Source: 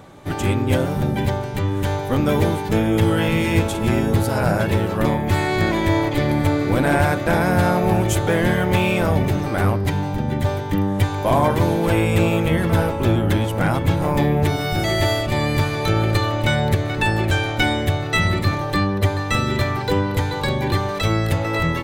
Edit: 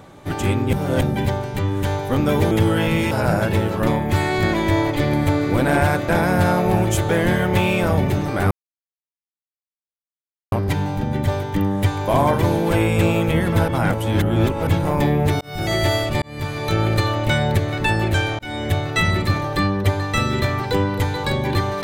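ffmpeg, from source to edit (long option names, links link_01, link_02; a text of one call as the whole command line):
ffmpeg -i in.wav -filter_complex "[0:a]asplit=11[link_01][link_02][link_03][link_04][link_05][link_06][link_07][link_08][link_09][link_10][link_11];[link_01]atrim=end=0.732[link_12];[link_02]atrim=start=0.728:end=1.012,asetpts=PTS-STARTPTS,areverse[link_13];[link_03]atrim=start=1.008:end=2.512[link_14];[link_04]atrim=start=2.918:end=3.522[link_15];[link_05]atrim=start=4.288:end=9.69,asetpts=PTS-STARTPTS,afade=type=out:start_time=5.398:duration=0.004:curve=hsin,apad=pad_dur=2.01[link_16];[link_06]atrim=start=9.69:end=12.852,asetpts=PTS-STARTPTS,afade=type=in:duration=0.004:curve=hsin[link_17];[link_07]atrim=start=12.848:end=13.842,asetpts=PTS-STARTPTS,areverse[link_18];[link_08]atrim=start=13.838:end=14.58,asetpts=PTS-STARTPTS,afade=type=out:start_time=0.738:duration=0.004:curve=hsin[link_19];[link_09]atrim=start=14.58:end=15.39,asetpts=PTS-STARTPTS,afade=type=in:duration=0.3,afade=type=out:start_time=0.806:duration=0.004:curve=hsin[link_20];[link_10]atrim=start=15.39:end=17.56,asetpts=PTS-STARTPTS,afade=type=in:duration=0.73:curve=qsin,afade=type=out:start_time=2.166:duration=0.004:curve=hsin[link_21];[link_11]atrim=start=17.56,asetpts=PTS-STARTPTS,afade=type=in:duration=0.34[link_22];[link_12][link_13]acrossfade=duration=0.004:curve1=hsin:curve2=hsin[link_23];[link_23][link_14]acrossfade=duration=0.004:curve1=hsin:curve2=hsin[link_24];[link_24][link_15]acrossfade=duration=0.004:curve1=hsin:curve2=hsin[link_25];[link_16][link_17]concat=n=2:v=0:a=1[link_26];[link_25][link_26]acrossfade=duration=0.004:curve1=hsin:curve2=hsin[link_27];[link_27][link_18]acrossfade=duration=0.004:curve1=hsin:curve2=hsin[link_28];[link_19][link_20][link_21][link_22]concat=n=4:v=0:a=1[link_29];[link_28][link_29]acrossfade=duration=0.004:curve1=hsin:curve2=hsin" out.wav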